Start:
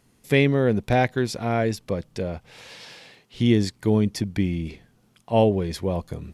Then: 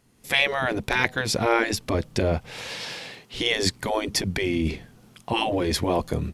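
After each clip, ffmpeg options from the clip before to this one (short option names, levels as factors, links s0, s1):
-af "afftfilt=real='re*lt(hypot(re,im),0.282)':imag='im*lt(hypot(re,im),0.282)':win_size=1024:overlap=0.75,dynaudnorm=f=180:g=3:m=3.55,volume=0.794"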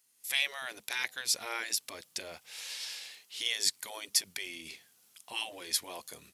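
-af "aderivative"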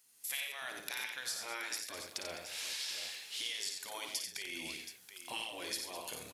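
-filter_complex "[0:a]acompressor=threshold=0.00891:ratio=6,asplit=2[s0][s1];[s1]aecho=0:1:55|90|134|207|726:0.447|0.501|0.2|0.224|0.282[s2];[s0][s2]amix=inputs=2:normalize=0,volume=1.33"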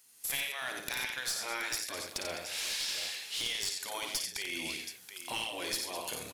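-af "aeval=exprs='clip(val(0),-1,0.015)':c=same,volume=1.88"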